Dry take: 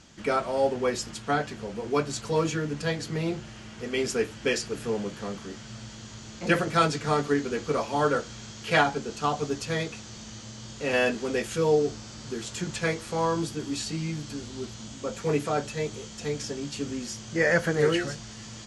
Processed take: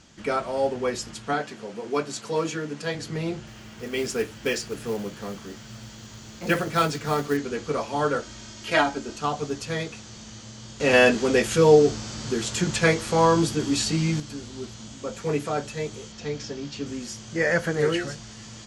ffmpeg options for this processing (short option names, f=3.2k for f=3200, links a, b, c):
-filter_complex "[0:a]asettb=1/sr,asplit=3[a][b][c];[a]atrim=end=1.334[d];[b]atrim=start=1.33:end=2.95,asetpts=PTS-STARTPTS,afade=t=in:d=0.004:c=qsin,afade=t=out:st=1.616:d=0.004:c=qsin,highpass=190[e];[c]atrim=start=2.946[f];[d][e]acrossfade=d=0.004:c1=hsin:c2=qsin[g];[g][f]acrossfade=d=0.004:c1=qsin:c2=hsin,asettb=1/sr,asplit=3[h][i][j];[h]atrim=end=3.474[k];[i]atrim=start=3.47:end=7.37,asetpts=PTS-STARTPTS,afade=t=in:d=0.004:c=qsin,afade=t=out:st=3.896:d=0.004:c=qsin,acrusher=bits=5:mode=log:mix=0:aa=0.000001[l];[j]atrim=start=7.366[m];[k][l]acrossfade=d=0.004:c1=hsin:c2=qsin[n];[n][m]acrossfade=d=0.004:c1=qsin:c2=hsin,asettb=1/sr,asplit=3[o][p][q];[o]atrim=end=8.224[r];[p]atrim=start=8.22:end=9.18,asetpts=PTS-STARTPTS,afade=t=in:d=0.004:c=qsin,afade=t=out:st=0.956:d=0.004:c=qsin,aecho=1:1:3.2:0.58,atrim=end_sample=42336[s];[q]atrim=start=9.176[t];[r][s]acrossfade=d=0.004:c1=hsin:c2=qsin[u];[u][t]acrossfade=d=0.004:c1=qsin:c2=hsin,asettb=1/sr,asplit=3[v][w][x];[v]atrim=end=16.124[y];[w]atrim=start=16.12:end=16.86,asetpts=PTS-STARTPTS,afade=t=in:d=0.004:c=qsin,afade=t=out:st=0.736:d=0.004:c=qsin,lowpass=f=6.2k:w=0.5412,lowpass=f=6.2k:w=1.3066[z];[x]atrim=start=16.856[aa];[y][z]acrossfade=d=0.004:c1=hsin:c2=qsin[ab];[ab][aa]acrossfade=d=0.004:c1=qsin:c2=hsin,asplit=3[ac][ad][ae];[ac]atrim=end=10.802[af];[ad]atrim=start=10.798:end=14.202,asetpts=PTS-STARTPTS,volume=7.5dB[ag];[ae]atrim=start=14.198[ah];[af][ag]acrossfade=d=0.004:c1=hsin:c2=hsin[ai];[ai][ah]acrossfade=d=0.004:c1=hsin:c2=hsin"